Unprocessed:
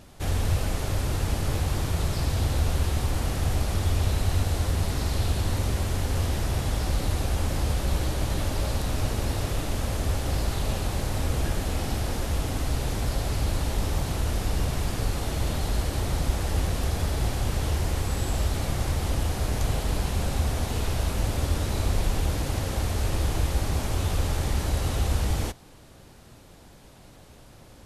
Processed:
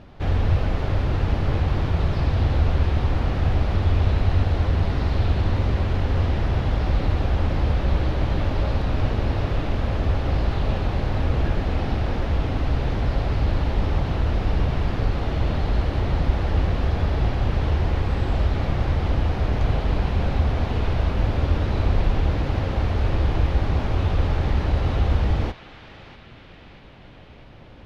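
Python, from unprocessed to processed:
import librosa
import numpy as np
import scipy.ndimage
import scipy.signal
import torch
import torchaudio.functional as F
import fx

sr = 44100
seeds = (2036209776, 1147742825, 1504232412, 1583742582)

p1 = fx.air_absorb(x, sr, metres=290.0)
p2 = p1 + fx.echo_banded(p1, sr, ms=641, feedback_pct=69, hz=2600.0, wet_db=-10, dry=0)
y = p2 * librosa.db_to_amplitude(5.0)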